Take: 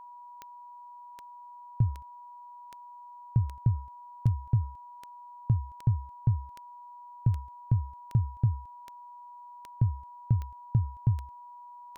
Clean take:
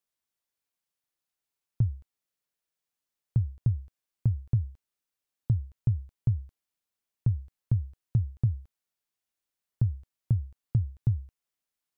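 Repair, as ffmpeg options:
-af "adeclick=t=4,bandreject=f=970:w=30"

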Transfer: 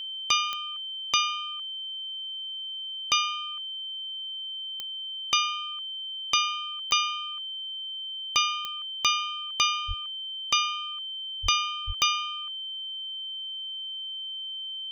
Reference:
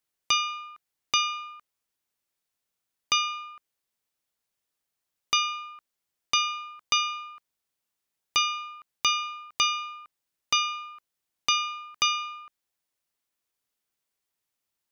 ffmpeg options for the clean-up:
-filter_complex "[0:a]adeclick=t=4,bandreject=f=3.1k:w=30,asplit=3[a][b][c];[a]afade=t=out:st=9.87:d=0.02[d];[b]highpass=f=140:w=0.5412,highpass=f=140:w=1.3066,afade=t=in:st=9.87:d=0.02,afade=t=out:st=9.99:d=0.02[e];[c]afade=t=in:st=9.99:d=0.02[f];[d][e][f]amix=inputs=3:normalize=0,asplit=3[g][h][i];[g]afade=t=out:st=11.42:d=0.02[j];[h]highpass=f=140:w=0.5412,highpass=f=140:w=1.3066,afade=t=in:st=11.42:d=0.02,afade=t=out:st=11.54:d=0.02[k];[i]afade=t=in:st=11.54:d=0.02[l];[j][k][l]amix=inputs=3:normalize=0,asplit=3[m][n][o];[m]afade=t=out:st=11.86:d=0.02[p];[n]highpass=f=140:w=0.5412,highpass=f=140:w=1.3066,afade=t=in:st=11.86:d=0.02,afade=t=out:st=11.98:d=0.02[q];[o]afade=t=in:st=11.98:d=0.02[r];[p][q][r]amix=inputs=3:normalize=0"

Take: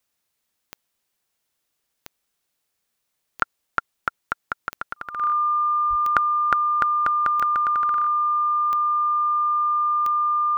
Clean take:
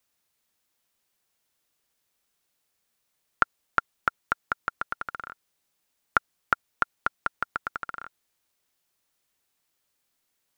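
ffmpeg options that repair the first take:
-filter_complex "[0:a]adeclick=t=4,bandreject=f=1.2k:w=30,asplit=3[a][b][c];[a]afade=t=out:st=5.89:d=0.02[d];[b]highpass=f=140:w=0.5412,highpass=f=140:w=1.3066,afade=t=in:st=5.89:d=0.02,afade=t=out:st=6.01:d=0.02[e];[c]afade=t=in:st=6.01:d=0.02[f];[d][e][f]amix=inputs=3:normalize=0"

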